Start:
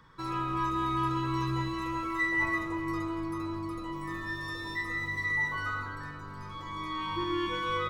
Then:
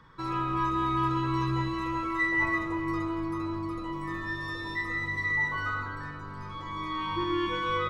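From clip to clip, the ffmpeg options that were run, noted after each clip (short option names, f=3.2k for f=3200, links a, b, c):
-af "highshelf=f=7.3k:g=-11.5,volume=2.5dB"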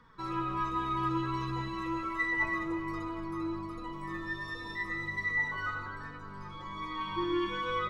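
-af "flanger=delay=4:depth=2:regen=42:speed=1.3:shape=triangular"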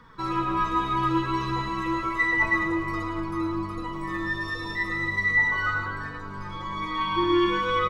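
-af "aecho=1:1:111:0.398,volume=8dB"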